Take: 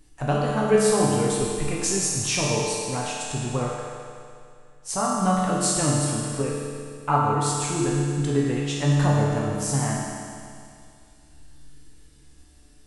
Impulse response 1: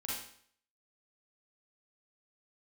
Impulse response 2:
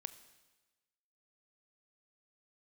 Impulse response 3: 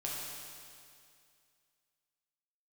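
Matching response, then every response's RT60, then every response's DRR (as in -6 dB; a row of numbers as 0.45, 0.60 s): 3; 0.60, 1.2, 2.3 s; -6.5, 12.0, -5.0 dB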